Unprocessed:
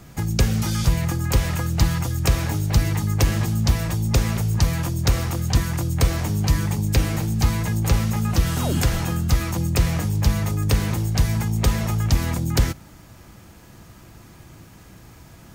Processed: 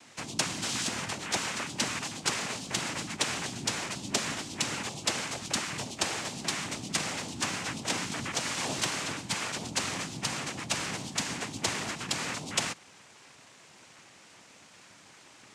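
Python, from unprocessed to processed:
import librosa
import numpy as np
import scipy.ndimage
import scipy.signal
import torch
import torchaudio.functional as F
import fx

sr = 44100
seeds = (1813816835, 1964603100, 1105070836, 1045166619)

y = fx.highpass(x, sr, hz=1100.0, slope=6)
y = fx.noise_vocoder(y, sr, seeds[0], bands=4)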